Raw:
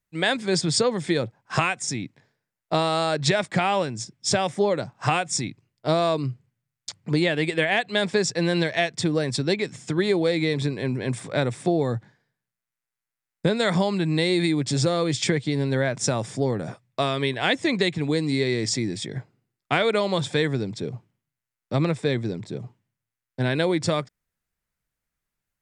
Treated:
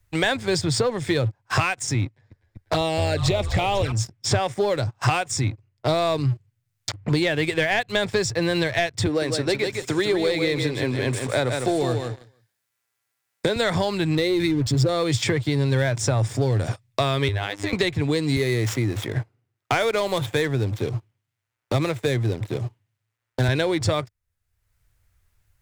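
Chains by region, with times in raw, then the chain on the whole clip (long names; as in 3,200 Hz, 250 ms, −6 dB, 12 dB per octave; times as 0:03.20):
0:02.05–0:03.92: echo with shifted repeats 247 ms, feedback 65%, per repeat −67 Hz, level −13.5 dB + flanger swept by the level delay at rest 9.4 ms, full sweep at −17.5 dBFS
0:09.06–0:13.56: high-pass filter 220 Hz + repeating echo 155 ms, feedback 18%, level −7 dB
0:14.15–0:14.89: spectral envelope exaggerated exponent 1.5 + slack as between gear wheels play −35.5 dBFS
0:17.28–0:17.73: mains-hum notches 60/120/180/240/300 Hz + phases set to zero 101 Hz + downward compressor 10 to 1, threshold −27 dBFS
0:18.36–0:23.48: running median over 9 samples + high-pass filter 180 Hz 6 dB per octave
whole clip: low shelf with overshoot 130 Hz +10 dB, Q 3; leveller curve on the samples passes 2; multiband upward and downward compressor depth 70%; level −5.5 dB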